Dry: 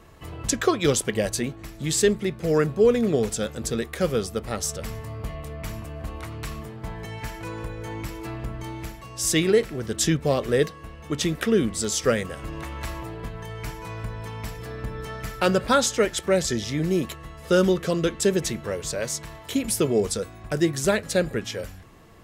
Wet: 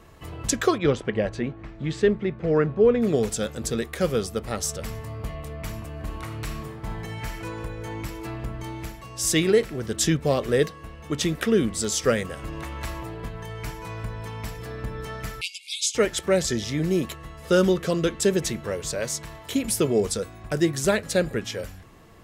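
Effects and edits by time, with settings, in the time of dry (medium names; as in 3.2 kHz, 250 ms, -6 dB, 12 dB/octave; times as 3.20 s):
0.78–3.02 s: low-pass 2.3 kHz
5.88–7.37 s: reverb throw, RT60 0.94 s, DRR 5.5 dB
15.41–15.95 s: brick-wall FIR band-pass 2.1–12 kHz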